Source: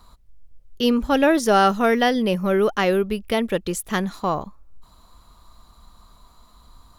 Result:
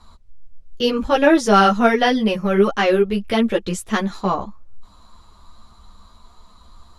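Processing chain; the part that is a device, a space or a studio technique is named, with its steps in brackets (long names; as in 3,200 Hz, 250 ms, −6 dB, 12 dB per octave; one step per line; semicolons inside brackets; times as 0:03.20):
string-machine ensemble chorus (string-ensemble chorus; low-pass filter 8,000 Hz 12 dB per octave)
level +6 dB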